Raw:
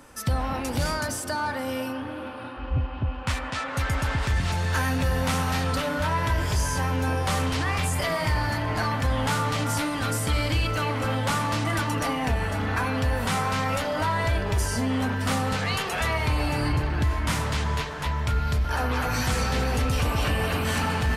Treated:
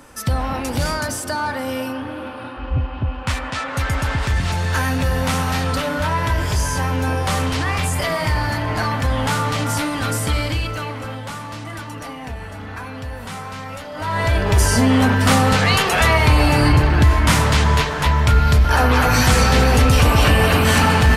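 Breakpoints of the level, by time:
0:10.29 +5 dB
0:11.32 −5.5 dB
0:13.91 −5.5 dB
0:14.17 +5 dB
0:14.67 +11 dB

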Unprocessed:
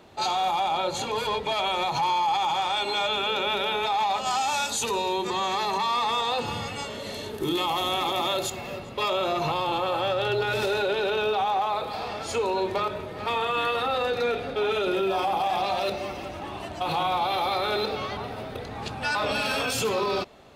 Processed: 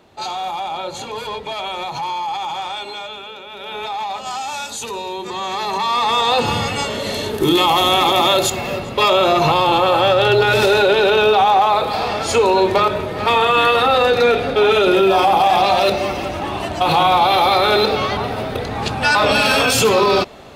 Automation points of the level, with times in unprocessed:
0:02.67 +0.5 dB
0:03.48 −10 dB
0:03.79 0 dB
0:05.18 0 dB
0:06.44 +12 dB

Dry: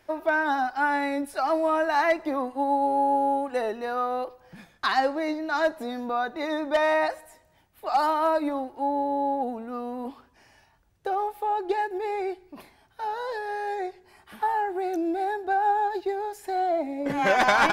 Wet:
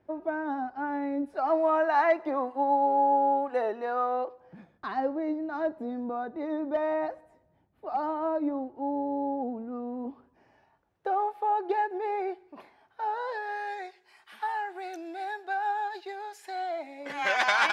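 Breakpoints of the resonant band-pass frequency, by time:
resonant band-pass, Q 0.57
0:01.18 190 Hz
0:01.62 740 Hz
0:04.12 740 Hz
0:04.85 210 Hz
0:10.09 210 Hz
0:11.09 840 Hz
0:13.10 840 Hz
0:13.87 2,900 Hz

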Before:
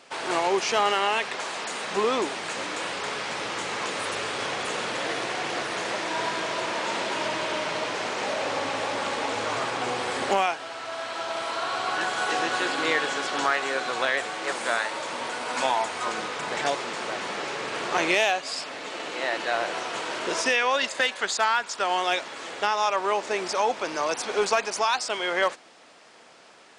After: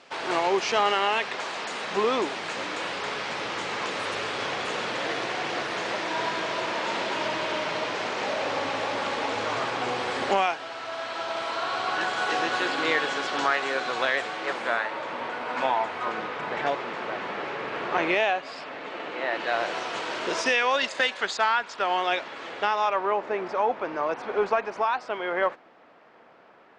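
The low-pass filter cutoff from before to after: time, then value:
0:14.16 5,400 Hz
0:14.83 2,500 Hz
0:19.26 2,500 Hz
0:19.66 5,600 Hz
0:21.06 5,600 Hz
0:21.65 3,400 Hz
0:22.73 3,400 Hz
0:23.16 1,700 Hz

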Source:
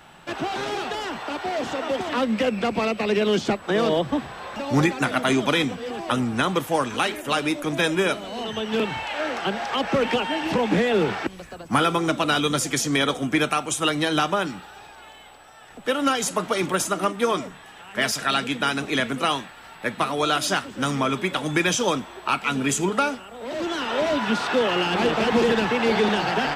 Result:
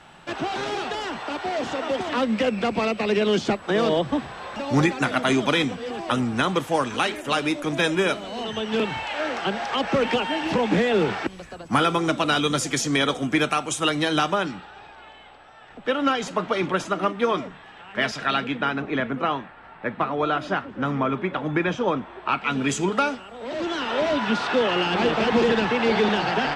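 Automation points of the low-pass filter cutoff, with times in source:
0:14.28 8,700 Hz
0:14.69 3,600 Hz
0:18.24 3,600 Hz
0:18.84 1,800 Hz
0:21.91 1,800 Hz
0:22.46 3,300 Hz
0:22.71 6,000 Hz

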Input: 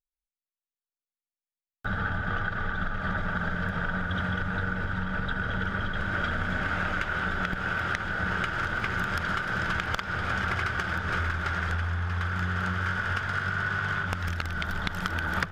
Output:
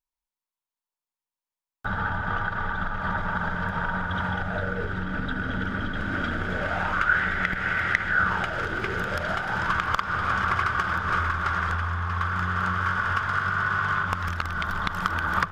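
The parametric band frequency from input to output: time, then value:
parametric band +13 dB 0.46 octaves
0:04.26 960 Hz
0:05.19 270 Hz
0:06.30 270 Hz
0:07.24 2,000 Hz
0:08.07 2,000 Hz
0:08.75 340 Hz
0:09.73 1,100 Hz

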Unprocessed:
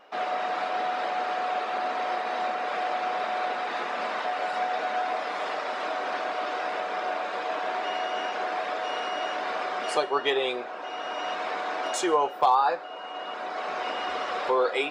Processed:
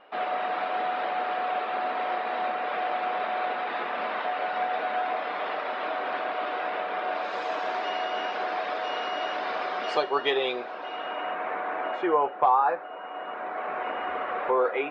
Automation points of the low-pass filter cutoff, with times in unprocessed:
low-pass filter 24 dB per octave
0:07.06 3,600 Hz
0:07.42 7,900 Hz
0:08.01 5,000 Hz
0:10.73 5,000 Hz
0:11.34 2,300 Hz

